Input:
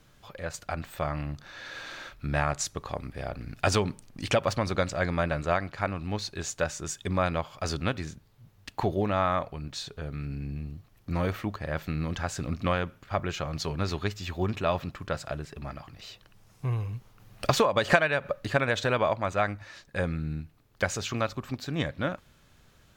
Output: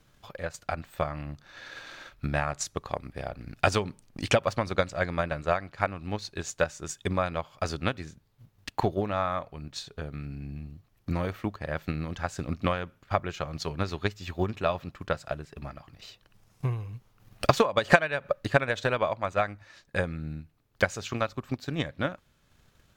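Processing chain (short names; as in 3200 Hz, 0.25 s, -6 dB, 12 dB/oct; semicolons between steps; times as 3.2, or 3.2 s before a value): transient shaper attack +8 dB, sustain -3 dB; gain -4 dB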